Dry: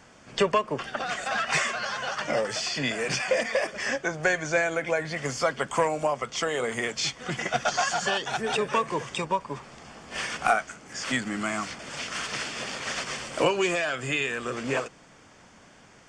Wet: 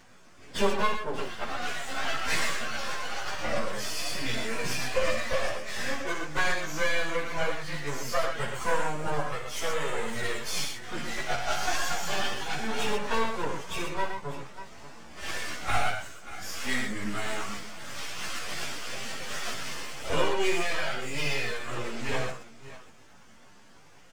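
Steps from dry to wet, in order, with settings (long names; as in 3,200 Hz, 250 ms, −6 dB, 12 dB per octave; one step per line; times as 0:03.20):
half-wave rectification
multi-tap delay 40/79/392 ms −6.5/−6/−15 dB
time stretch by phase vocoder 1.5×
level +2 dB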